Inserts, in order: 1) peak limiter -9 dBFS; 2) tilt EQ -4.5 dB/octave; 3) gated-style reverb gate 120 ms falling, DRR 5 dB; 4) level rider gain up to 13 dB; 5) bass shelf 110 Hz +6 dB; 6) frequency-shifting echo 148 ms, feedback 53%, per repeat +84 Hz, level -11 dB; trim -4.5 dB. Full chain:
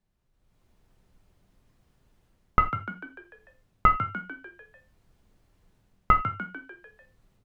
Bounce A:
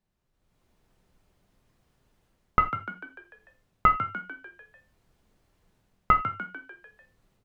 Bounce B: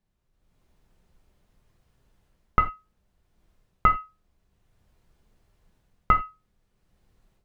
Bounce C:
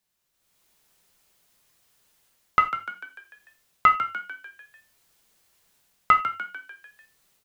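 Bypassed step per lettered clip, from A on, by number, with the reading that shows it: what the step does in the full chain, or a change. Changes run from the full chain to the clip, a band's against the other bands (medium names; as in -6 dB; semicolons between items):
5, 125 Hz band -3.5 dB; 6, momentary loudness spread change -12 LU; 2, 125 Hz band -14.5 dB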